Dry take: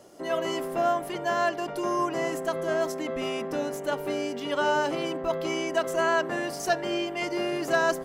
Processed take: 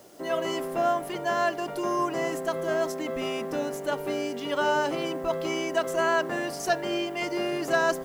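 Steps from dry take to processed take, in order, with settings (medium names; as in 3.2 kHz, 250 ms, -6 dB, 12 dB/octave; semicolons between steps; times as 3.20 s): word length cut 10-bit, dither triangular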